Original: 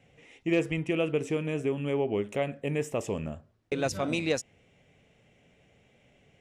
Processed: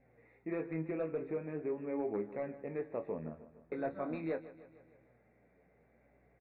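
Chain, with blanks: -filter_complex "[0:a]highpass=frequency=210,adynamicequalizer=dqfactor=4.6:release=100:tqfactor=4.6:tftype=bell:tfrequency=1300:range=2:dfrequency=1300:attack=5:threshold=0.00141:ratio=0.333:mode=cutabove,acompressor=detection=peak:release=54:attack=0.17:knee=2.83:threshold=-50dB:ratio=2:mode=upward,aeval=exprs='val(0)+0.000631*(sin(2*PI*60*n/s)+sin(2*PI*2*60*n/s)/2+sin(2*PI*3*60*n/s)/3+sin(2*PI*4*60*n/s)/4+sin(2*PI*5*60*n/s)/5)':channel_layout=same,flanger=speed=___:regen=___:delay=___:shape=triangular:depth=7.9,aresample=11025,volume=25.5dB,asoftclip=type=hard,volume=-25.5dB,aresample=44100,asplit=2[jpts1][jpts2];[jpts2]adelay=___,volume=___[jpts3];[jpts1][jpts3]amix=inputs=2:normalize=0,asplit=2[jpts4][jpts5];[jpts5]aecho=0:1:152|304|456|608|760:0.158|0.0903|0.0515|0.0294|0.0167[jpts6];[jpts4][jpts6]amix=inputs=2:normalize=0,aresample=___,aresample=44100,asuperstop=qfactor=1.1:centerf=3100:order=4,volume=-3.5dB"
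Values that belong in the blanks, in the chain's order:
0.4, 50, 7.4, 25, -11dB, 8000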